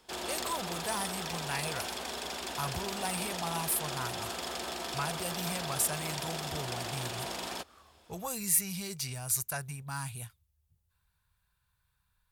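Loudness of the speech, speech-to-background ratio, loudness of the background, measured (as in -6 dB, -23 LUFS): -35.0 LUFS, 2.0 dB, -37.0 LUFS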